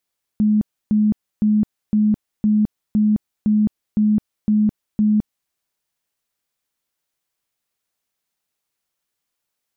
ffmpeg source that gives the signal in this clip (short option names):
-f lavfi -i "aevalsrc='0.237*sin(2*PI*212*mod(t,0.51))*lt(mod(t,0.51),45/212)':d=5.1:s=44100"